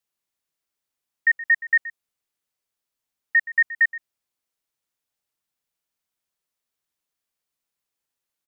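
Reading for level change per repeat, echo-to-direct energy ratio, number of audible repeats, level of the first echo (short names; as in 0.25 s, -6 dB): no steady repeat, -16.5 dB, 1, -16.5 dB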